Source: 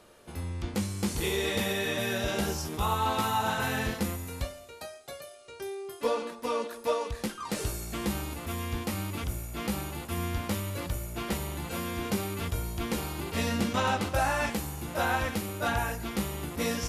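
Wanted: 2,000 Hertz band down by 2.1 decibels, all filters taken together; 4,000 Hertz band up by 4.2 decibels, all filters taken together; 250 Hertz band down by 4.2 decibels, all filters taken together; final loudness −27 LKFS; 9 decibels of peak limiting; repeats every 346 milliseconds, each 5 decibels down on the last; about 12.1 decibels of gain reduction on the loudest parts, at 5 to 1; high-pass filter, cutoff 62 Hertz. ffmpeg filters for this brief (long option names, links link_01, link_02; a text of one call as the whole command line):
ffmpeg -i in.wav -af "highpass=62,equalizer=frequency=250:width_type=o:gain=-5.5,equalizer=frequency=2000:width_type=o:gain=-4.5,equalizer=frequency=4000:width_type=o:gain=6.5,acompressor=threshold=-38dB:ratio=5,alimiter=level_in=7.5dB:limit=-24dB:level=0:latency=1,volume=-7.5dB,aecho=1:1:346|692|1038|1384|1730|2076|2422:0.562|0.315|0.176|0.0988|0.0553|0.031|0.0173,volume=13dB" out.wav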